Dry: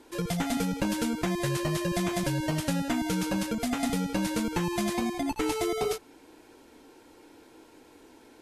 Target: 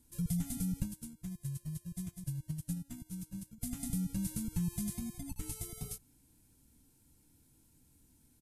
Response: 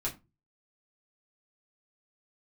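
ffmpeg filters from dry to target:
-filter_complex "[0:a]asplit=3[a][b][c];[a]afade=t=out:st=0.83:d=0.02[d];[b]agate=range=-18dB:threshold=-26dB:ratio=16:detection=peak,afade=t=in:st=0.83:d=0.02,afade=t=out:st=3.61:d=0.02[e];[c]afade=t=in:st=3.61:d=0.02[f];[d][e][f]amix=inputs=3:normalize=0,firequalizer=gain_entry='entry(150,0);entry(370,-29);entry(9300,-1)':delay=0.05:min_phase=1,volume=1dB"

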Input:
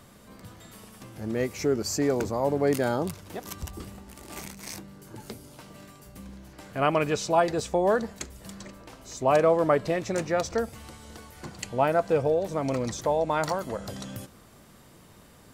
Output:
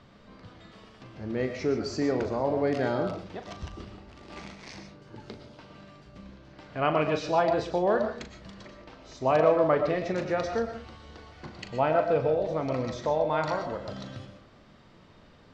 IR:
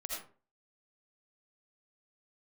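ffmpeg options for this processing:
-filter_complex "[0:a]lowpass=f=4.8k:w=0.5412,lowpass=f=4.8k:w=1.3066,asplit=2[a][b];[1:a]atrim=start_sample=2205,adelay=39[c];[b][c]afir=irnorm=-1:irlink=0,volume=-5dB[d];[a][d]amix=inputs=2:normalize=0,volume=-2.5dB"

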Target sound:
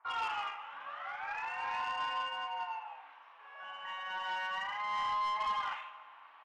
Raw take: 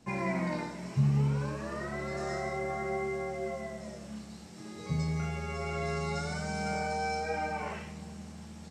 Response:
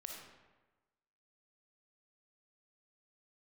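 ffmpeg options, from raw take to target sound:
-filter_complex "[0:a]asuperpass=centerf=1200:order=8:qfactor=0.75,asplit=2[a][b];[b]adynamicsmooth=sensitivity=4:basefreq=1.7k,volume=1dB[c];[a][c]amix=inputs=2:normalize=0,acrossover=split=1400[d][e];[e]adelay=50[f];[d][f]amix=inputs=2:normalize=0,asetrate=59535,aresample=44100,asplit=2[g][h];[1:a]atrim=start_sample=2205,adelay=145[i];[h][i]afir=irnorm=-1:irlink=0,volume=-15.5dB[j];[g][j]amix=inputs=2:normalize=0,asoftclip=type=tanh:threshold=-29dB"

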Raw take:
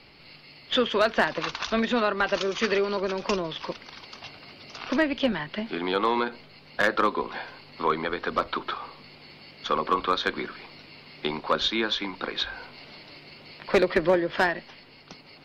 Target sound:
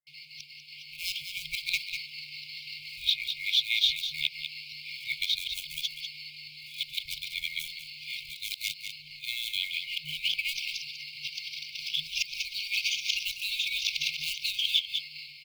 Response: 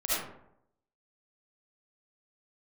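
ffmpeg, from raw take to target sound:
-filter_complex "[0:a]areverse,acrossover=split=140|860[a][b][c];[a]aeval=exprs='sgn(val(0))*max(abs(val(0))-0.00126,0)':c=same[d];[b]acompressor=threshold=-39dB:ratio=6[e];[c]acrusher=bits=5:mode=log:mix=0:aa=0.000001[f];[d][e][f]amix=inputs=3:normalize=0,lowshelf=f=150:t=q:w=1.5:g=-10,asplit=2[g][h];[h]aecho=0:1:195:0.282[i];[g][i]amix=inputs=2:normalize=0,acrossover=split=190|3500[j][k][l];[j]acompressor=threshold=-52dB:ratio=4[m];[k]acompressor=threshold=-30dB:ratio=4[n];[l]acompressor=threshold=-38dB:ratio=4[o];[m][n][o]amix=inputs=3:normalize=0,afftfilt=real='re*(1-between(b*sr/4096,160,2100))':imag='im*(1-between(b*sr/4096,160,2100))':win_size=4096:overlap=0.75,adynamicequalizer=threshold=0.00355:dfrequency=1700:dqfactor=0.7:tfrequency=1700:tqfactor=0.7:attack=5:release=100:ratio=0.375:range=1.5:mode=boostabove:tftype=highshelf,volume=4.5dB"

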